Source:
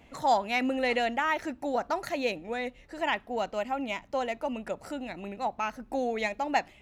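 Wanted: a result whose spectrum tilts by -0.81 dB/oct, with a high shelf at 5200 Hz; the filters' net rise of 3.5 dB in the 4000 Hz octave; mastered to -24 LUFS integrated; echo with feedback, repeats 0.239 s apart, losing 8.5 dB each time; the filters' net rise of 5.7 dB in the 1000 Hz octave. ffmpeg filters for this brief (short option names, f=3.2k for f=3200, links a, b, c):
-af "equalizer=f=1k:t=o:g=7.5,equalizer=f=4k:t=o:g=3,highshelf=f=5.2k:g=3,aecho=1:1:239|478|717|956:0.376|0.143|0.0543|0.0206,volume=2.5dB"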